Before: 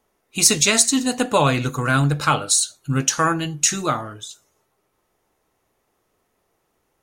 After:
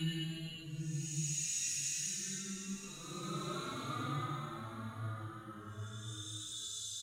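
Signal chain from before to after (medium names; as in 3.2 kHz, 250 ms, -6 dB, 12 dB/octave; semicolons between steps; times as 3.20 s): amplifier tone stack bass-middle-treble 6-0-2; compression 6:1, threshold -43 dBFS, peak gain reduction 17.5 dB; Paulstretch 8.3×, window 0.25 s, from 3.44 s; repeats whose band climbs or falls 198 ms, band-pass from 380 Hz, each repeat 0.7 oct, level -3 dB; endless flanger 3.5 ms +0.93 Hz; trim +10.5 dB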